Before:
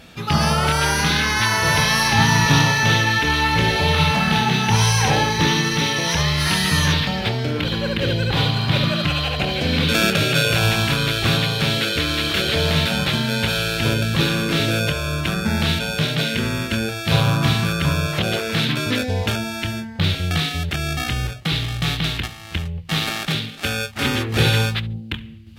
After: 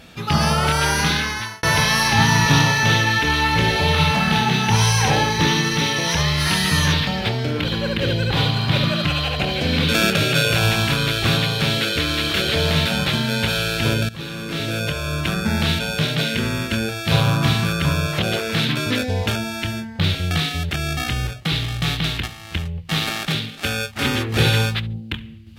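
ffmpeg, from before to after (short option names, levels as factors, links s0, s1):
-filter_complex "[0:a]asplit=3[s0][s1][s2];[s0]atrim=end=1.63,asetpts=PTS-STARTPTS,afade=t=out:st=1.07:d=0.56[s3];[s1]atrim=start=1.63:end=14.09,asetpts=PTS-STARTPTS,afade=t=in:d=0.004:c=hsin,afade=t=out:st=12.456:d=0.004:c=hsin:silence=0.133352[s4];[s2]atrim=start=14.09,asetpts=PTS-STARTPTS,afade=t=in:d=1.13:silence=0.133352[s5];[s3][s4][s5]concat=n=3:v=0:a=1"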